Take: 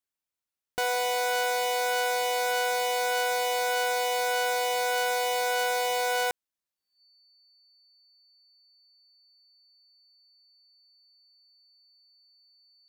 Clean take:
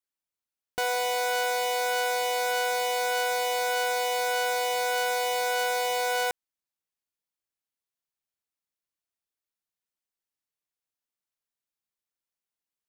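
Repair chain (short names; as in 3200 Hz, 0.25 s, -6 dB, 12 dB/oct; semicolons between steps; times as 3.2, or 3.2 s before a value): notch 4500 Hz, Q 30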